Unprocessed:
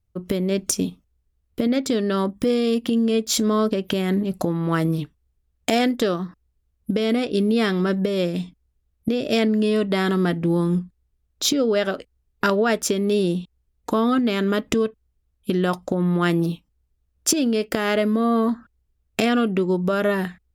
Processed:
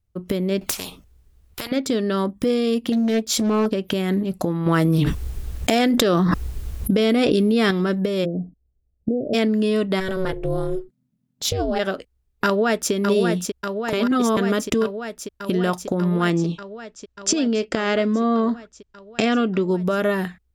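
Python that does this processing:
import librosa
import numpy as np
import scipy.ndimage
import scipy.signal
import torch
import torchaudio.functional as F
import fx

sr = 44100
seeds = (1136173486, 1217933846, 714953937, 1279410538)

y = fx.spectral_comp(x, sr, ratio=4.0, at=(0.61, 1.72))
y = fx.doppler_dist(y, sr, depth_ms=0.4, at=(2.92, 3.66))
y = fx.env_flatten(y, sr, amount_pct=100, at=(4.66, 7.71))
y = fx.steep_lowpass(y, sr, hz=770.0, slope=72, at=(8.24, 9.33), fade=0.02)
y = fx.ring_mod(y, sr, carrier_hz=190.0, at=(9.99, 11.78), fade=0.02)
y = fx.echo_throw(y, sr, start_s=12.45, length_s=0.47, ms=590, feedback_pct=80, wet_db=-5.0)
y = fx.steep_lowpass(y, sr, hz=7800.0, slope=48, at=(16.3, 19.71))
y = fx.edit(y, sr, fx.reverse_span(start_s=13.93, length_s=0.44), tone=tone)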